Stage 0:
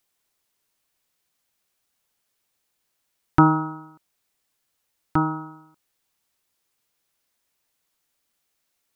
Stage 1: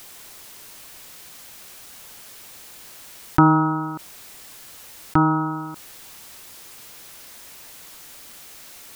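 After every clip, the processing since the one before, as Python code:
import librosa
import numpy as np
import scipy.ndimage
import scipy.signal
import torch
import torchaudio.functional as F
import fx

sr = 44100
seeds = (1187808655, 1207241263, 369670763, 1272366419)

y = fx.env_flatten(x, sr, amount_pct=50)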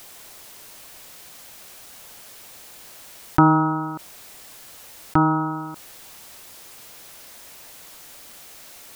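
y = fx.peak_eq(x, sr, hz=640.0, db=3.5, octaves=0.85)
y = y * librosa.db_to_amplitude(-1.0)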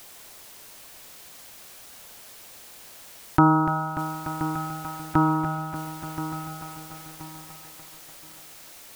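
y = fx.echo_feedback(x, sr, ms=1026, feedback_pct=26, wet_db=-12.5)
y = fx.echo_crushed(y, sr, ms=293, feedback_pct=80, bits=7, wet_db=-10.0)
y = y * librosa.db_to_amplitude(-2.5)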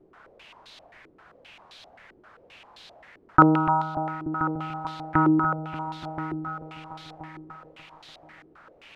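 y = fx.filter_held_lowpass(x, sr, hz=7.6, low_hz=360.0, high_hz=3800.0)
y = y * librosa.db_to_amplitude(-2.5)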